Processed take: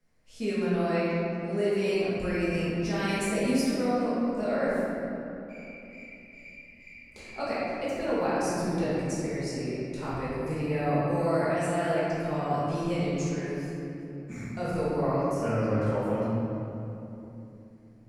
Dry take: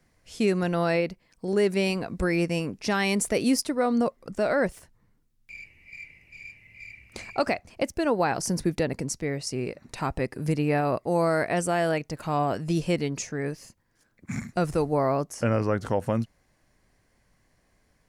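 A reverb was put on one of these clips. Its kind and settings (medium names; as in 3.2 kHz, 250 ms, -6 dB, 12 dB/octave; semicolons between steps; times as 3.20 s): simulated room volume 140 m³, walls hard, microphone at 1.4 m; trim -14 dB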